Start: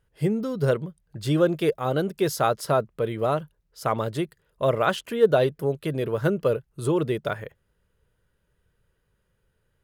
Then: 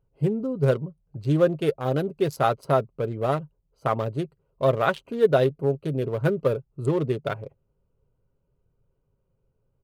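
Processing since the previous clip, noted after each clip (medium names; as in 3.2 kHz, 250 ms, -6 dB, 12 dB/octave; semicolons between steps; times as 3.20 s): local Wiener filter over 25 samples; comb 7.4 ms, depth 34%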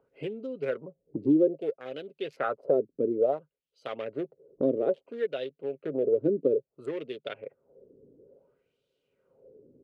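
wah-wah 0.59 Hz 290–3600 Hz, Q 3.2; ten-band graphic EQ 250 Hz +9 dB, 500 Hz +11 dB, 1 kHz -10 dB; three bands compressed up and down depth 70%; trim -2 dB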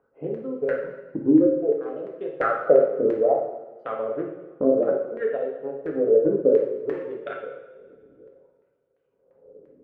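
LFO low-pass saw down 2.9 Hz 550–1800 Hz; transient shaper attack +2 dB, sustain -6 dB; two-slope reverb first 0.88 s, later 2.2 s, from -17 dB, DRR -1 dB; trim -1 dB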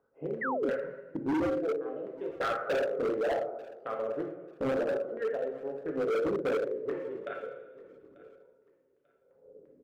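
hard clipper -21 dBFS, distortion -6 dB; painted sound fall, 0.41–0.70 s, 220–2100 Hz -27 dBFS; feedback delay 891 ms, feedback 26%, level -22 dB; trim -5.5 dB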